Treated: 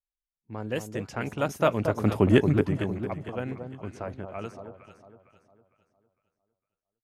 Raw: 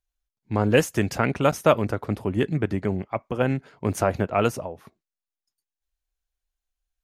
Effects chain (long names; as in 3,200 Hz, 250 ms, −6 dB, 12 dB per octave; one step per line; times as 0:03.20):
source passing by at 0:02.24, 8 m/s, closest 1.5 metres
low-pass that shuts in the quiet parts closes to 1,000 Hz, open at −36 dBFS
delay that swaps between a low-pass and a high-pass 228 ms, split 1,100 Hz, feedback 59%, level −6.5 dB
level +5.5 dB